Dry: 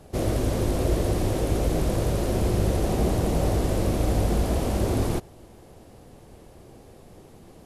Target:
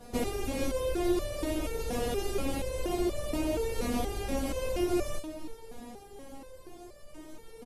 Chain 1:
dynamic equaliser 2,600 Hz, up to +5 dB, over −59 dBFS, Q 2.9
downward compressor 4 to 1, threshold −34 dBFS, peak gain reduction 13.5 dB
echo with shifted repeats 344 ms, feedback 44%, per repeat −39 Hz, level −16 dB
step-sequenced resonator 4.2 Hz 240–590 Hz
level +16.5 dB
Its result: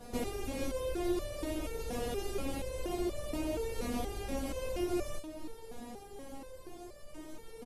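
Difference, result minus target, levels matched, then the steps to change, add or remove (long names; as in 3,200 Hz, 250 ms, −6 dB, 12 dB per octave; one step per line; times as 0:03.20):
downward compressor: peak gain reduction +5 dB
change: downward compressor 4 to 1, threshold −27.5 dBFS, peak gain reduction 9 dB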